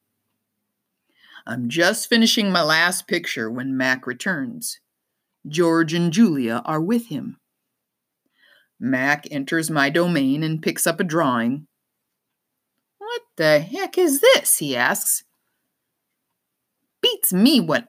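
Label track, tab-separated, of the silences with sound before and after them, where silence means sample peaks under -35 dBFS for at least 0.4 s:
4.750000	5.450000	silence
7.310000	8.810000	silence
11.600000	13.010000	silence
15.190000	17.030000	silence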